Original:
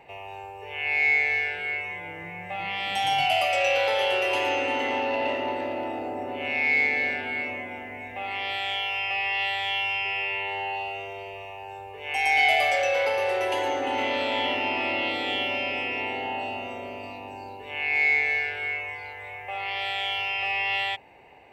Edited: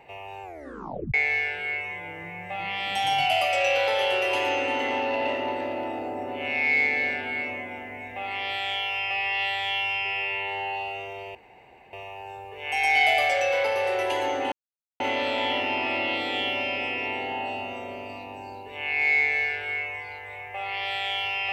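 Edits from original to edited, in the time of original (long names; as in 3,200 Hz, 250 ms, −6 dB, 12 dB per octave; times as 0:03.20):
0:00.43: tape stop 0.71 s
0:11.35: splice in room tone 0.58 s
0:13.94: splice in silence 0.48 s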